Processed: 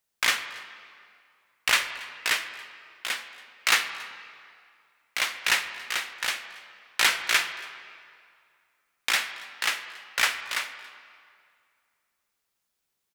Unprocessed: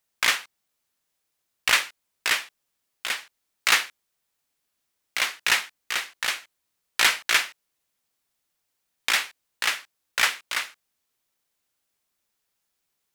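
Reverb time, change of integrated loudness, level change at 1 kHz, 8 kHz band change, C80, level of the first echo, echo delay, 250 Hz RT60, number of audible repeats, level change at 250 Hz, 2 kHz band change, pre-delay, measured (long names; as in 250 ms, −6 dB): 2.2 s, −2.0 dB, −1.5 dB, −2.0 dB, 11.0 dB, −23.5 dB, 279 ms, 2.1 s, 1, −1.5 dB, −1.5 dB, 17 ms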